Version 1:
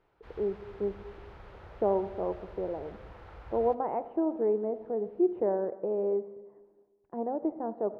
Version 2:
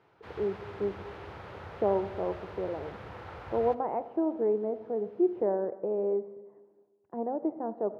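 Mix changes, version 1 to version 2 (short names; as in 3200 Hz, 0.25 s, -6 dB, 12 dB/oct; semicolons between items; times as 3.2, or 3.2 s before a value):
background +7.5 dB; master: add HPF 83 Hz 24 dB/oct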